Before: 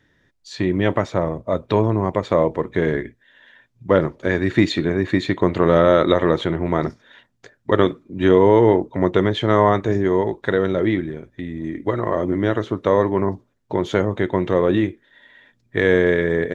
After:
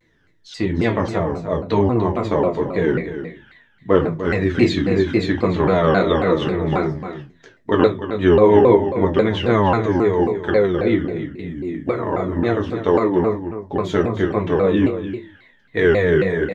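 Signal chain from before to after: delay 297 ms -10.5 dB; reverberation RT60 0.30 s, pre-delay 4 ms, DRR 0 dB; vibrato with a chosen wave saw down 3.7 Hz, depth 250 cents; trim -3.5 dB

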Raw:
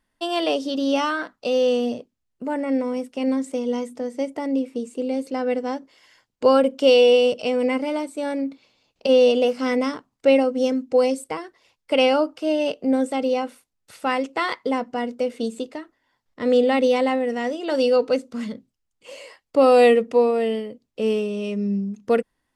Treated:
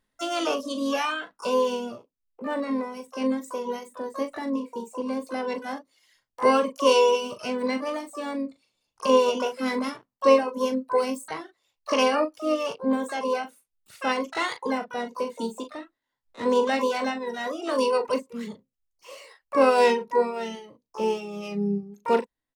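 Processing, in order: reverb removal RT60 1.5 s; early reflections 15 ms -16.5 dB, 39 ms -9 dB; harmony voices -3 st -16 dB, +12 st -7 dB; trim -4 dB

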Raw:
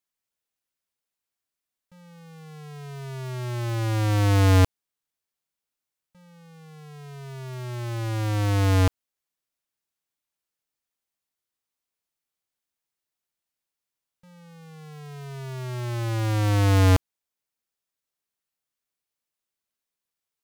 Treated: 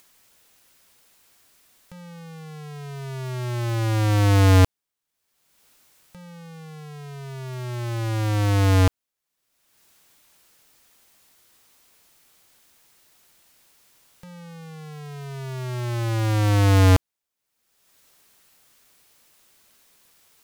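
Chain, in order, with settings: upward compressor, threshold -40 dBFS; trim +2.5 dB

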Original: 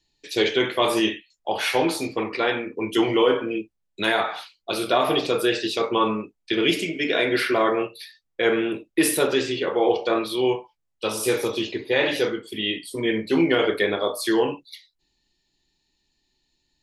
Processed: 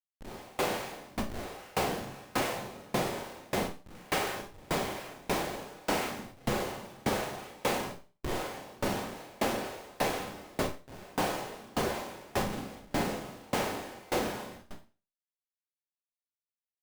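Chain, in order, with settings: reverse spectral sustain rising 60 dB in 0.51 s; steep low-pass 1.7 kHz 96 dB/octave; level rider gain up to 4.5 dB; peak limiter -14 dBFS, peak gain reduction 10 dB; noise-vocoded speech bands 4; Schmitt trigger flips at -32.5 dBFS; Schroeder reverb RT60 0.48 s, combs from 30 ms, DRR -4.5 dB; sawtooth tremolo in dB decaying 1.7 Hz, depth 29 dB; trim -8 dB

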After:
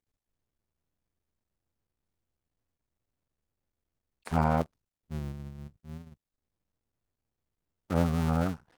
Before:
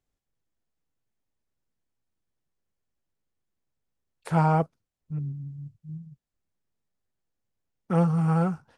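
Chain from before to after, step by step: cycle switcher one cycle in 2, muted; trim -1.5 dB

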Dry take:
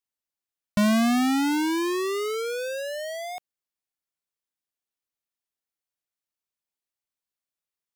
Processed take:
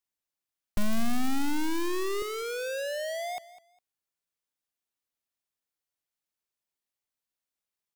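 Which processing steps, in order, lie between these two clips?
one-sided wavefolder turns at -31 dBFS; 2.22–3.37 s: Chebyshev high-pass 580 Hz, order 2; feedback delay 203 ms, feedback 21%, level -17 dB

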